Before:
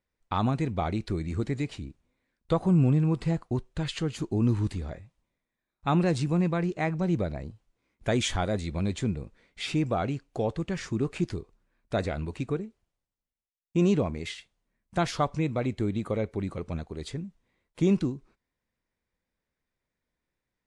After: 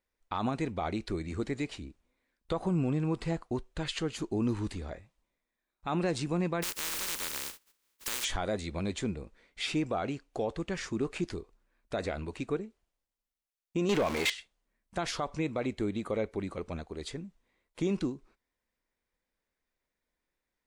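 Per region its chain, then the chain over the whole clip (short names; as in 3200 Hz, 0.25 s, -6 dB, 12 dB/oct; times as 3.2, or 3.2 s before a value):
6.62–8.23 spectral contrast lowered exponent 0.1 + bell 700 Hz -12 dB 0.24 oct + compressor, threshold -29 dBFS
13.89–14.3 zero-crossing step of -37 dBFS + overdrive pedal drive 19 dB, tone 7400 Hz, clips at -13.5 dBFS
whole clip: bell 120 Hz -10 dB 1.5 oct; limiter -21.5 dBFS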